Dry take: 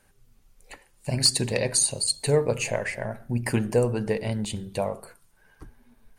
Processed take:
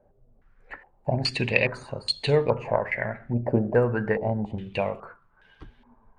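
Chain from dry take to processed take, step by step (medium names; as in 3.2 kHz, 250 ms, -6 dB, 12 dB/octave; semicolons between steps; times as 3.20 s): Chebyshev shaper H 2 -25 dB, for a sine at -8.5 dBFS; 4.49–4.90 s: short-mantissa float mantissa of 4-bit; step-sequenced low-pass 2.4 Hz 620–3300 Hz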